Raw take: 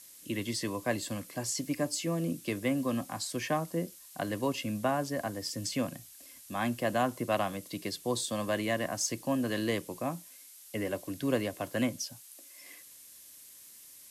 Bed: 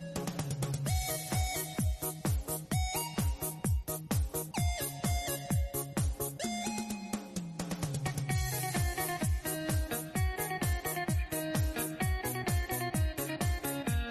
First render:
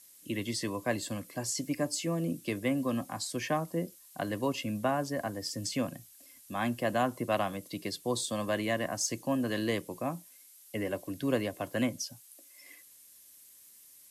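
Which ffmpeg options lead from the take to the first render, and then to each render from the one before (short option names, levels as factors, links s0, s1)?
-af "afftdn=nr=6:nf=-53"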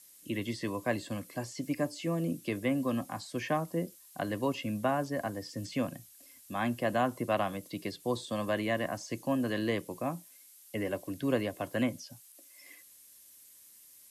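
-filter_complex "[0:a]acrossover=split=3400[s0][s1];[s1]acompressor=threshold=0.00398:ratio=4:attack=1:release=60[s2];[s0][s2]amix=inputs=2:normalize=0"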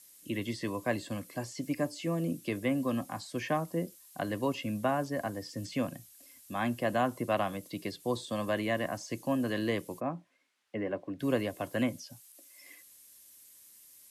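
-filter_complex "[0:a]asplit=3[s0][s1][s2];[s0]afade=t=out:st=9.99:d=0.02[s3];[s1]highpass=120,lowpass=2000,afade=t=in:st=9.99:d=0.02,afade=t=out:st=11.19:d=0.02[s4];[s2]afade=t=in:st=11.19:d=0.02[s5];[s3][s4][s5]amix=inputs=3:normalize=0"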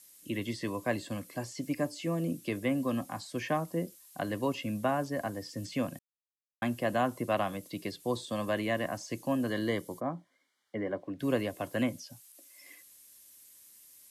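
-filter_complex "[0:a]asettb=1/sr,asplit=3[s0][s1][s2];[s0]atrim=end=9.474[s3];[s1]atrim=start=9.47:end=11.02,asetpts=PTS-STARTPTS,afade=t=in:d=0.004:c=qsin,afade=t=out:st=1.546:d=0.004:c=qsin,asuperstop=centerf=2600:order=12:qfactor=5.5[s4];[s2]atrim=start=11.016[s5];[s3][s4]acrossfade=d=0.004:c1=hsin:c2=qsin[s6];[s6][s5]acrossfade=d=0.004:c1=qsin:c2=hsin,asplit=3[s7][s8][s9];[s7]atrim=end=5.99,asetpts=PTS-STARTPTS,afade=t=out:st=5.986:d=0.004:c=hsin[s10];[s8]atrim=start=5.99:end=6.62,asetpts=PTS-STARTPTS,volume=0[s11];[s9]atrim=start=6.62,asetpts=PTS-STARTPTS,afade=t=in:d=0.004:c=hsin[s12];[s10][s11][s12]concat=n=3:v=0:a=1"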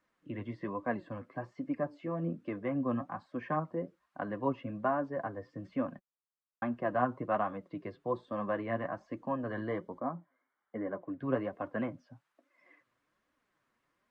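-af "flanger=delay=3.2:depth=5.4:regen=34:speed=1.2:shape=triangular,lowpass=f=1300:t=q:w=1.8"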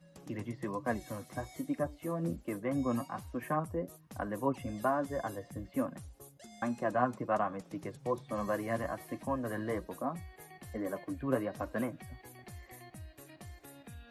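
-filter_complex "[1:a]volume=0.133[s0];[0:a][s0]amix=inputs=2:normalize=0"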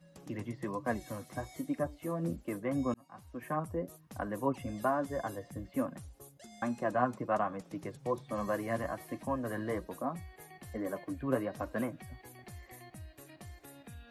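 -filter_complex "[0:a]asplit=2[s0][s1];[s0]atrim=end=2.94,asetpts=PTS-STARTPTS,afade=t=out:st=2.936:d=0.004:c=hsin[s2];[s1]atrim=start=2.94,asetpts=PTS-STARTPTS,afade=t=in:d=0.76[s3];[s2][s3]concat=n=2:v=0:a=1"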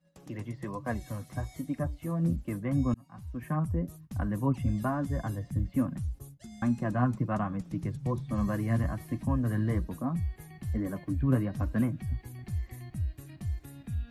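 -af "agate=range=0.224:threshold=0.00141:ratio=16:detection=peak,asubboost=boost=9:cutoff=170"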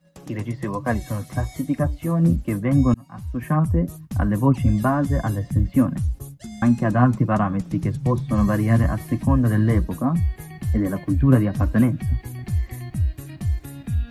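-af "volume=3.35"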